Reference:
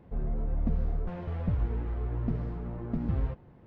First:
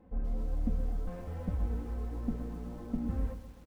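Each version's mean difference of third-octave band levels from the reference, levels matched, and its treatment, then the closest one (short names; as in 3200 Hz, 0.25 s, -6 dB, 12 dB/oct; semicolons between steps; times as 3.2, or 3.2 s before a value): 6.5 dB: high shelf 2300 Hz -7.5 dB; comb 3.9 ms, depth 90%; lo-fi delay 0.127 s, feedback 55%, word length 8-bit, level -11 dB; gain -6 dB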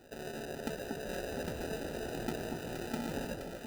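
15.5 dB: HPF 480 Hz 12 dB/oct; sample-rate reducer 1100 Hz, jitter 0%; echo with dull and thin repeats by turns 0.236 s, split 1100 Hz, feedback 74%, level -4 dB; gain +6 dB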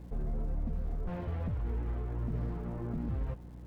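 4.0 dB: limiter -28 dBFS, peak gain reduction 10 dB; hum 60 Hz, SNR 13 dB; crackle 320/s -58 dBFS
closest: third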